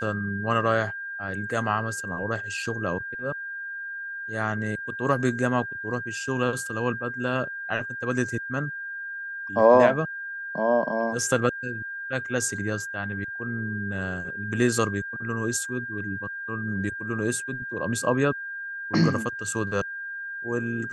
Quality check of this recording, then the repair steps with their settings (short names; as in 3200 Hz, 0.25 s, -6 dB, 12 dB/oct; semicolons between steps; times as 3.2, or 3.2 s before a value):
tone 1600 Hz -32 dBFS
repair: notch 1600 Hz, Q 30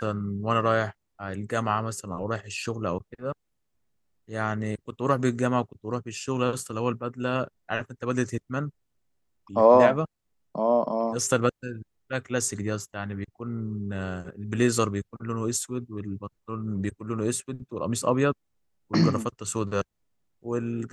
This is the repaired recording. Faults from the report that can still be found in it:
none